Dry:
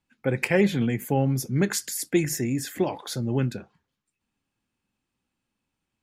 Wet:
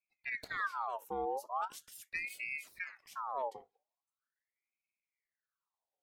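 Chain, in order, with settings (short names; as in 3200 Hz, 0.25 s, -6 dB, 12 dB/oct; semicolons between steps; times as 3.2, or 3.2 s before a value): dynamic EQ 7400 Hz, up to -5 dB, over -43 dBFS, Q 1.5; HPF 58 Hz; passive tone stack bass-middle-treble 10-0-1; ring modulator with a swept carrier 1500 Hz, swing 60%, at 0.41 Hz; gain +4.5 dB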